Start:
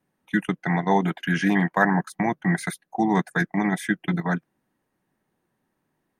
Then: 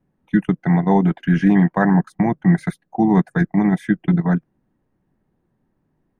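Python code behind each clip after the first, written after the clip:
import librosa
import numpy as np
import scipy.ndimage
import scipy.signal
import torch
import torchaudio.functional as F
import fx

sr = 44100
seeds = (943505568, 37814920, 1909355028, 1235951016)

y = fx.tilt_eq(x, sr, slope=-3.5)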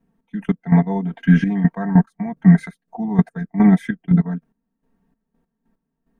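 y = x + 0.82 * np.pad(x, (int(4.4 * sr / 1000.0), 0))[:len(x)]
y = fx.hpss(y, sr, part='percussive', gain_db=-5)
y = fx.step_gate(y, sr, bpm=146, pattern='xx..x..x...x', floor_db=-12.0, edge_ms=4.5)
y = F.gain(torch.from_numpy(y), 1.5).numpy()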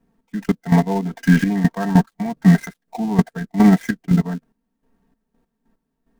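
y = fx.dead_time(x, sr, dead_ms=0.12)
y = fx.peak_eq(y, sr, hz=170.0, db=-5.0, octaves=0.64)
y = F.gain(torch.from_numpy(y), 3.5).numpy()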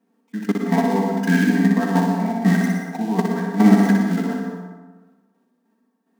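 y = fx.brickwall_highpass(x, sr, low_hz=180.0)
y = fx.echo_feedback(y, sr, ms=61, feedback_pct=54, wet_db=-4.0)
y = fx.rev_plate(y, sr, seeds[0], rt60_s=1.3, hf_ratio=0.45, predelay_ms=90, drr_db=3.5)
y = F.gain(torch.from_numpy(y), -1.5).numpy()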